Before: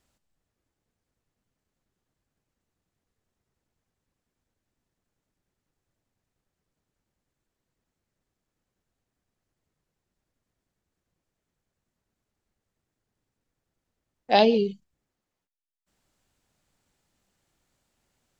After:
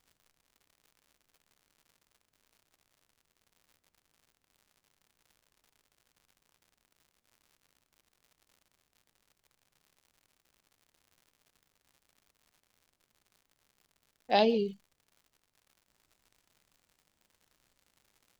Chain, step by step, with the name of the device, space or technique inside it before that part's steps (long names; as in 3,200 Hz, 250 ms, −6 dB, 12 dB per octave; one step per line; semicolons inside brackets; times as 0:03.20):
warped LP (wow of a warped record 33 1/3 rpm, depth 160 cents; surface crackle 130 per second −45 dBFS; pink noise bed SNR 42 dB)
level −6.5 dB